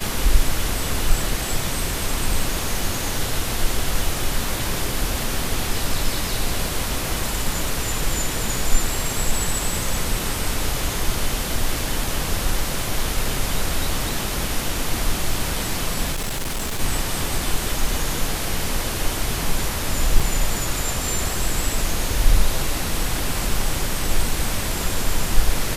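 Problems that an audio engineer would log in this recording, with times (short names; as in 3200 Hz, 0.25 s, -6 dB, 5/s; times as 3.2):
16.12–16.8 clipped -21.5 dBFS
20.2 gap 4 ms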